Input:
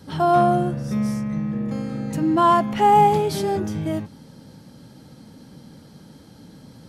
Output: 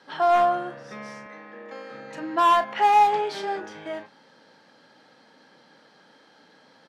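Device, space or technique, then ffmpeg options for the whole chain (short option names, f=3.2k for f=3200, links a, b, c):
megaphone: -filter_complex "[0:a]highpass=630,lowpass=3.7k,equalizer=f=1.7k:t=o:w=0.27:g=6,asoftclip=type=hard:threshold=-14.5dB,asplit=2[a][b];[b]adelay=36,volume=-10.5dB[c];[a][c]amix=inputs=2:normalize=0,asettb=1/sr,asplit=3[d][e][f];[d]atrim=end=1.264[g];[e]atrim=start=1.26:end=1.91,asetpts=PTS-STARTPTS,afade=t=in:d=0.004:c=qsin,afade=t=out:st=0.646:d=0.004:c=qsin,highpass=f=230:w=0.5412,highpass=f=230:w=1.3066[h];[f]atrim=start=1.906[i];[g][h]acrossfade=d=0.004:c1=hsin:c2=qsin[j];[j][i]acrossfade=d=0.004:c1=qsin:c2=hsin"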